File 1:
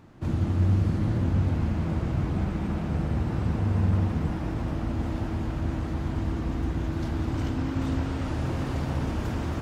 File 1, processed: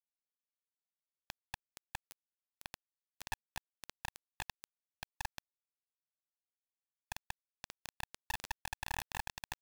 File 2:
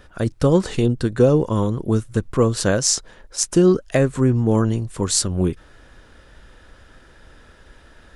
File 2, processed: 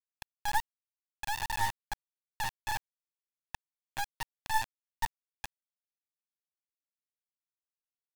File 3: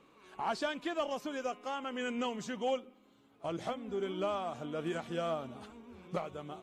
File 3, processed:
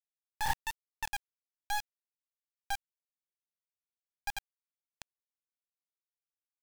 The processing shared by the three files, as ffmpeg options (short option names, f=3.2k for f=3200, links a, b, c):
-af "asuperpass=centerf=860:order=20:qfactor=6.2,acrusher=bits=4:dc=4:mix=0:aa=0.000001,volume=10dB"